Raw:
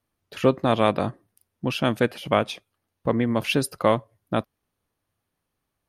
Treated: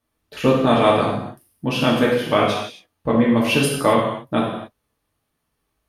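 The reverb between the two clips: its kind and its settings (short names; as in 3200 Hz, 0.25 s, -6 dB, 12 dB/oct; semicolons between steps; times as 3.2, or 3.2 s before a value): non-linear reverb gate 0.3 s falling, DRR -4.5 dB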